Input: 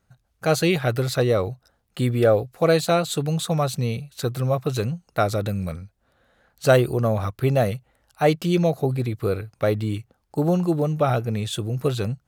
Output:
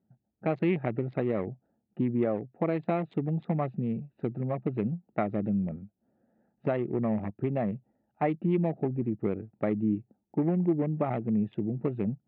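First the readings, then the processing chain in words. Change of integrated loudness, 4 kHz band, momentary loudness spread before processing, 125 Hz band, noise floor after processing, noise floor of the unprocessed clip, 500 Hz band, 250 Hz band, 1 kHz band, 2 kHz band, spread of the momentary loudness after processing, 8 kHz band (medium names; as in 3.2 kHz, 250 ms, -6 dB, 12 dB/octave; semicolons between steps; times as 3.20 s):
-7.5 dB, under -25 dB, 9 LU, -9.0 dB, -80 dBFS, -70 dBFS, -10.0 dB, -2.5 dB, -9.0 dB, -13.0 dB, 6 LU, under -40 dB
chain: local Wiener filter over 41 samples; dynamic bell 950 Hz, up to -4 dB, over -37 dBFS, Q 1.9; compression 10:1, threshold -21 dBFS, peak gain reduction 10 dB; cabinet simulation 180–2200 Hz, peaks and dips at 210 Hz +9 dB, 320 Hz +4 dB, 500 Hz -6 dB, 910 Hz +5 dB, 1.5 kHz -10 dB, 2.1 kHz +5 dB; trim -1.5 dB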